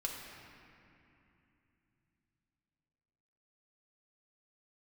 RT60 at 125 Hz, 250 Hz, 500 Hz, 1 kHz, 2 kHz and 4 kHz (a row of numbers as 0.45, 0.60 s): 4.7, 4.1, 2.9, 2.8, 2.9, 1.9 s